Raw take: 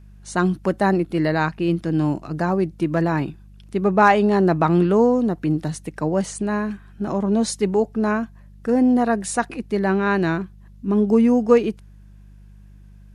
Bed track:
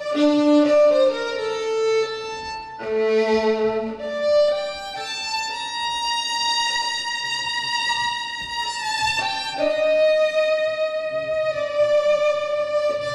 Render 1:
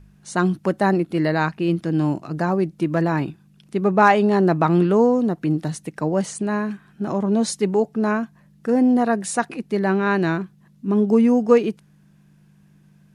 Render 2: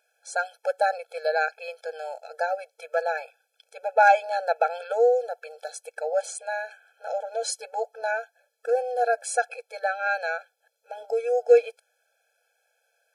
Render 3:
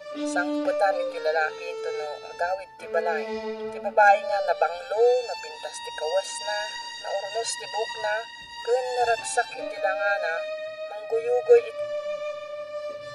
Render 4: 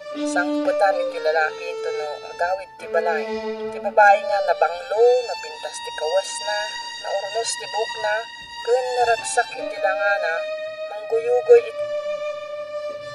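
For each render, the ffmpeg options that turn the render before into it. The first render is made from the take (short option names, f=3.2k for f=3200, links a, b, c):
-af "bandreject=f=50:t=h:w=4,bandreject=f=100:t=h:w=4"
-af "afftfilt=real='re*eq(mod(floor(b*sr/1024/440),2),1)':imag='im*eq(mod(floor(b*sr/1024/440),2),1)':win_size=1024:overlap=0.75"
-filter_complex "[1:a]volume=-12.5dB[a];[0:a][a]amix=inputs=2:normalize=0"
-af "volume=4.5dB,alimiter=limit=-3dB:level=0:latency=1"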